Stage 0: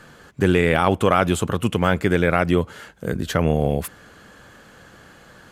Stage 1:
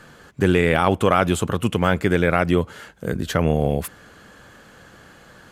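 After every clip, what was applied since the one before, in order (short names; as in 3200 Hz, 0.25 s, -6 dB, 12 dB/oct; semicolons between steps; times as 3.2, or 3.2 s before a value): nothing audible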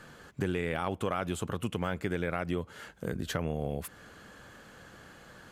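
compressor 2.5:1, threshold -27 dBFS, peak gain reduction 10.5 dB; gain -5 dB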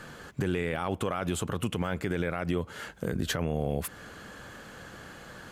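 limiter -24 dBFS, peak gain reduction 9 dB; gain +6 dB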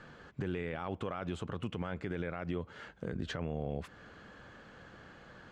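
air absorption 140 m; gain -7 dB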